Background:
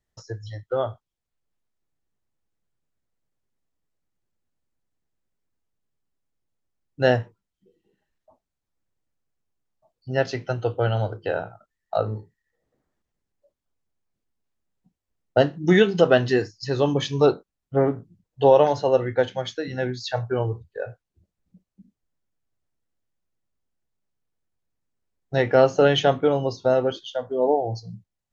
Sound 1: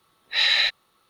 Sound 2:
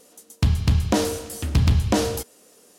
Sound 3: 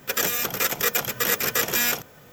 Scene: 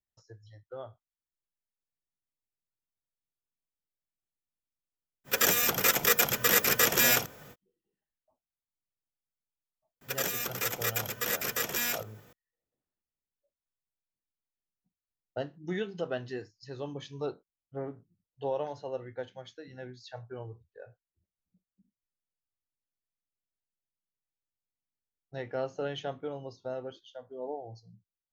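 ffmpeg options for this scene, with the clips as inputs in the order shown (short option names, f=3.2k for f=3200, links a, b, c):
-filter_complex "[3:a]asplit=2[a][b];[0:a]volume=-17.5dB[c];[a]atrim=end=2.32,asetpts=PTS-STARTPTS,volume=-1dB,afade=t=in:d=0.05,afade=t=out:st=2.27:d=0.05,adelay=5240[d];[b]atrim=end=2.32,asetpts=PTS-STARTPTS,volume=-8.5dB,afade=t=in:d=0.004:c=hsin,afade=t=out:st=2.316:d=0.004:c=hsin,adelay=10010[e];[c][d][e]amix=inputs=3:normalize=0"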